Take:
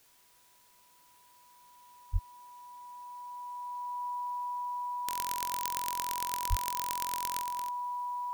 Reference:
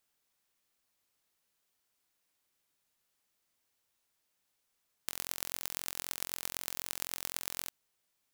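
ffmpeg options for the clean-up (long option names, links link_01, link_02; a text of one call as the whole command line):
ffmpeg -i in.wav -filter_complex "[0:a]bandreject=frequency=980:width=30,asplit=3[link_01][link_02][link_03];[link_01]afade=type=out:start_time=2.12:duration=0.02[link_04];[link_02]highpass=frequency=140:width=0.5412,highpass=frequency=140:width=1.3066,afade=type=in:start_time=2.12:duration=0.02,afade=type=out:start_time=2.24:duration=0.02[link_05];[link_03]afade=type=in:start_time=2.24:duration=0.02[link_06];[link_04][link_05][link_06]amix=inputs=3:normalize=0,asplit=3[link_07][link_08][link_09];[link_07]afade=type=out:start_time=6.49:duration=0.02[link_10];[link_08]highpass=frequency=140:width=0.5412,highpass=frequency=140:width=1.3066,afade=type=in:start_time=6.49:duration=0.02,afade=type=out:start_time=6.61:duration=0.02[link_11];[link_09]afade=type=in:start_time=6.61:duration=0.02[link_12];[link_10][link_11][link_12]amix=inputs=3:normalize=0,agate=range=-21dB:threshold=-55dB,asetnsamples=nb_out_samples=441:pad=0,asendcmd='7.42 volume volume 7.5dB',volume=0dB" out.wav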